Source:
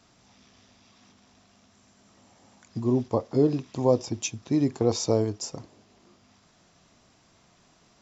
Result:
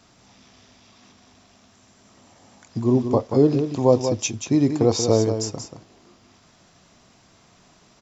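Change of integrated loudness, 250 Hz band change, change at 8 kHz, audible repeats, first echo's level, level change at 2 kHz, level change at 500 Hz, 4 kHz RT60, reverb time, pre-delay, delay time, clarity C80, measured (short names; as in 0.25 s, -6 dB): +6.0 dB, +5.5 dB, n/a, 1, -8.0 dB, +5.5 dB, +5.5 dB, none, none, none, 0.183 s, none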